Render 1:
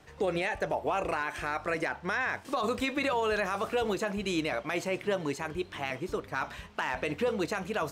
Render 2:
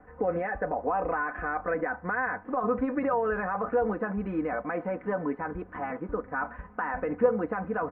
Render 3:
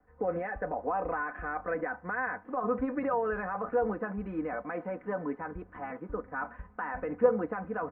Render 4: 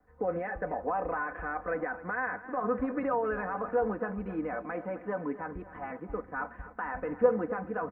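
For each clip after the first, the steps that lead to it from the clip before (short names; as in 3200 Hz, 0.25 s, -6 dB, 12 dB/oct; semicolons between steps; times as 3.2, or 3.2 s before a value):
steep low-pass 1700 Hz 36 dB/oct; comb 4 ms, depth 77%; in parallel at -2 dB: level quantiser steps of 21 dB; on the sum: gain -1 dB
three-band expander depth 40%; gain -3.5 dB
feedback echo 0.261 s, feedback 50%, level -15.5 dB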